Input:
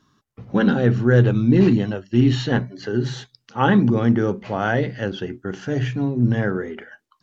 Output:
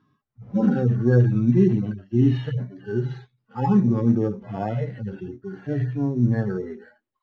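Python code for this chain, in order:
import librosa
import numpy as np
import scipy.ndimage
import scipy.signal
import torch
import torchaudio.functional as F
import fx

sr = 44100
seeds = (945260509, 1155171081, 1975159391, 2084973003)

p1 = fx.hpss_only(x, sr, part='harmonic')
p2 = fx.sample_hold(p1, sr, seeds[0], rate_hz=6000.0, jitter_pct=0)
p3 = p1 + (p2 * librosa.db_to_amplitude(-7.0))
p4 = fx.air_absorb(p3, sr, metres=210.0)
y = p4 * librosa.db_to_amplitude(-4.5)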